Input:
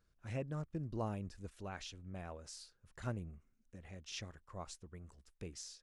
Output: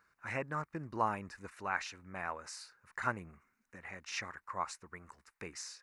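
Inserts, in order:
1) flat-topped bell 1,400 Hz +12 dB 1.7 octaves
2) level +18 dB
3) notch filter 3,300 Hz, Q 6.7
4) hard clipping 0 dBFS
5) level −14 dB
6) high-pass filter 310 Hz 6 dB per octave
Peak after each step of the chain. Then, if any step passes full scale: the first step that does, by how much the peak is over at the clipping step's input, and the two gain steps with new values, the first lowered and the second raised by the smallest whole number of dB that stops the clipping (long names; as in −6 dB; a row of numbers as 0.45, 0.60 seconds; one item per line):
−21.5, −3.5, −3.5, −3.5, −17.5, −18.0 dBFS
no step passes full scale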